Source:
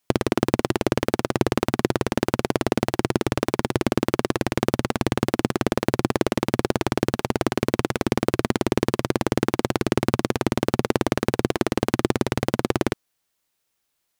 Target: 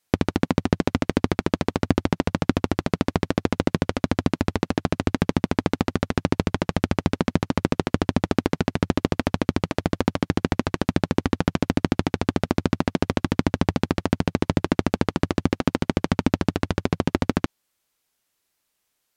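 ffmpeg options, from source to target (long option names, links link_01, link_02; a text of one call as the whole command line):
ffmpeg -i in.wav -filter_complex "[0:a]asetrate=32667,aresample=44100,acrossover=split=7400[link_01][link_02];[link_02]acompressor=threshold=-48dB:ratio=4:attack=1:release=60[link_03];[link_01][link_03]amix=inputs=2:normalize=0" out.wav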